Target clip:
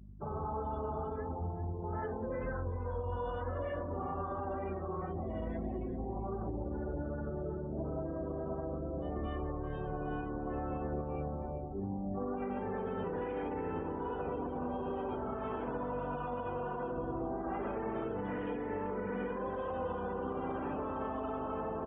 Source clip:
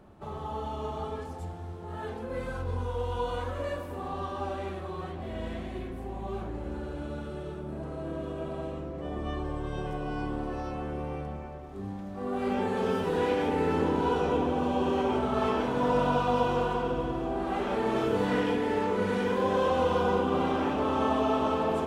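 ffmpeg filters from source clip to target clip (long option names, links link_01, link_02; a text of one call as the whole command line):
ffmpeg -i in.wav -filter_complex "[0:a]acrossover=split=2800[link_01][link_02];[link_02]acompressor=threshold=-54dB:ratio=4:attack=1:release=60[link_03];[link_01][link_03]amix=inputs=2:normalize=0,afftdn=noise_reduction=33:noise_floor=-41,acompressor=threshold=-29dB:ratio=12,alimiter=level_in=8.5dB:limit=-24dB:level=0:latency=1:release=161,volume=-8.5dB,asplit=2[link_04][link_05];[link_05]asetrate=52444,aresample=44100,atempo=0.840896,volume=-17dB[link_06];[link_04][link_06]amix=inputs=2:normalize=0,aeval=exprs='val(0)+0.002*(sin(2*PI*50*n/s)+sin(2*PI*2*50*n/s)/2+sin(2*PI*3*50*n/s)/3+sin(2*PI*4*50*n/s)/4+sin(2*PI*5*50*n/s)/5)':channel_layout=same,asplit=2[link_07][link_08];[link_08]aecho=0:1:390:0.178[link_09];[link_07][link_09]amix=inputs=2:normalize=0,aresample=8000,aresample=44100,volume=3dB" out.wav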